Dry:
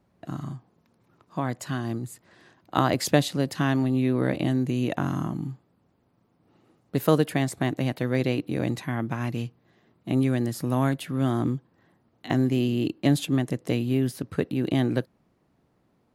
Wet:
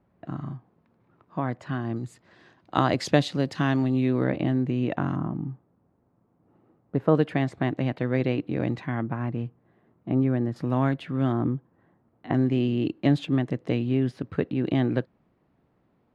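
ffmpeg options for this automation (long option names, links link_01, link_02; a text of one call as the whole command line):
ffmpeg -i in.wav -af "asetnsamples=nb_out_samples=441:pad=0,asendcmd='1.96 lowpass f 4900;4.24 lowpass f 2500;5.16 lowpass f 1300;7.15 lowpass f 2700;9.03 lowpass f 1500;10.56 lowpass f 2900;11.32 lowpass f 1600;12.34 lowpass f 3000',lowpass=2300" out.wav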